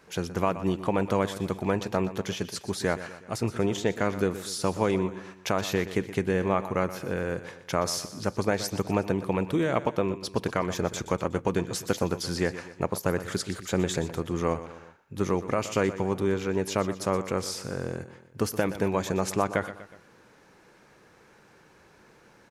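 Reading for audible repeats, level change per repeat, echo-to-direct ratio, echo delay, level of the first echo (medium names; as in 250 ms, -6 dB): 3, -6.0 dB, -12.5 dB, 122 ms, -14.0 dB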